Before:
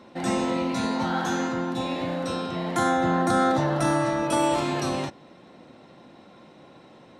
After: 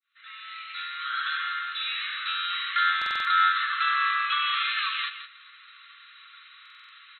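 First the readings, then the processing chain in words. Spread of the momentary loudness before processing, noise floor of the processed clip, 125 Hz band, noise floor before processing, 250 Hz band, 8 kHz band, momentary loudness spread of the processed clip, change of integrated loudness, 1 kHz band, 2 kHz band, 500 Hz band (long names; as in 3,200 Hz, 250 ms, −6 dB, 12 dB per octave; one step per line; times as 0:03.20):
7 LU, −52 dBFS, below −40 dB, −51 dBFS, below −40 dB, below −30 dB, 16 LU, −0.5 dB, −1.0 dB, +7.0 dB, below −40 dB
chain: fade in at the beginning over 2.29 s
spectral tilt +1.5 dB per octave
in parallel at −3 dB: hard clipping −28.5 dBFS, distortion −6 dB
on the sum: linear-phase brick-wall band-pass 1,100–4,200 Hz
on a send: single-tap delay 166 ms −10.5 dB
on the sum: buffer that repeats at 0:02.97/0:06.61, samples 2,048, times 5
level +3.5 dB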